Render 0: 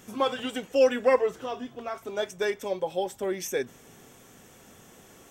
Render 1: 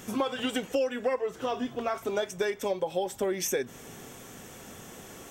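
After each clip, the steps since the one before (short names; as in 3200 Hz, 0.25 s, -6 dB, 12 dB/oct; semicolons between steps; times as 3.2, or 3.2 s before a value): compressor 8:1, threshold -32 dBFS, peak gain reduction 16.5 dB; gain +6.5 dB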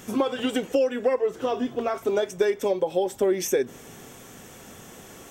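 dynamic EQ 370 Hz, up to +7 dB, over -42 dBFS, Q 0.99; gain +1 dB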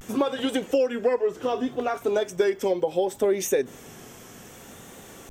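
vibrato 0.66 Hz 73 cents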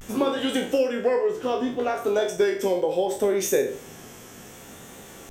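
spectral trails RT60 0.46 s; de-hum 55.66 Hz, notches 29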